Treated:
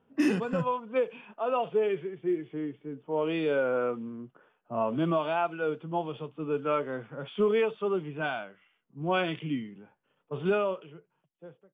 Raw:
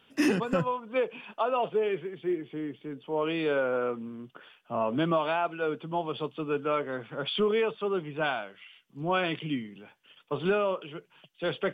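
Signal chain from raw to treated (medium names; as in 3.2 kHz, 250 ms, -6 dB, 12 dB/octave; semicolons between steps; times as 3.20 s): fade out at the end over 1.33 s; harmonic-percussive split percussive -10 dB; level-controlled noise filter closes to 880 Hz, open at -24.5 dBFS; trim +1 dB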